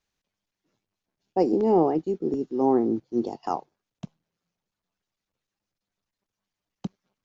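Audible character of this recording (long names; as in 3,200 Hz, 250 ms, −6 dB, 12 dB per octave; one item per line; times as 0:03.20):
background noise floor −88 dBFS
spectral slope 0.0 dB per octave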